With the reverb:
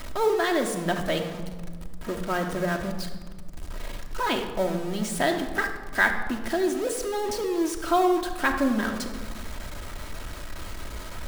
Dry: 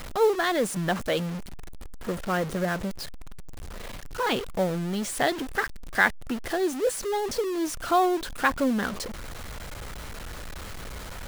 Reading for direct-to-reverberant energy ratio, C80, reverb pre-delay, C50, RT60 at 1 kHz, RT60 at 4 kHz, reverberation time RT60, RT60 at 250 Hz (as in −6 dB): 3.0 dB, 9.5 dB, 3 ms, 7.5 dB, 1.4 s, 0.90 s, 1.5 s, 1.9 s